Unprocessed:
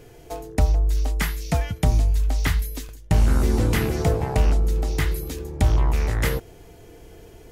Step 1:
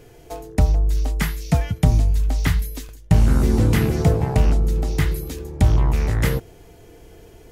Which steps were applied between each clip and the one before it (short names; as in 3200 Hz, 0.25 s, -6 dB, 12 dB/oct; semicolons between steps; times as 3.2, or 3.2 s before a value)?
dynamic EQ 150 Hz, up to +7 dB, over -33 dBFS, Q 0.74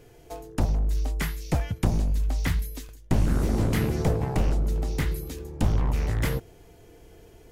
one-sided fold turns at -14.5 dBFS; gain -5.5 dB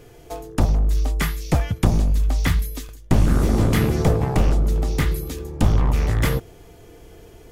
small resonant body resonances 1200/3400 Hz, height 7 dB; gain +6 dB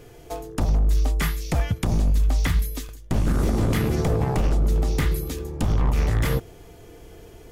limiter -13 dBFS, peak gain reduction 9 dB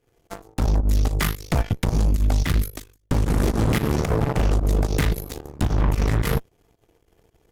added harmonics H 4 -12 dB, 7 -18 dB, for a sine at -12.5 dBFS; pump 111 bpm, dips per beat 2, -14 dB, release 85 ms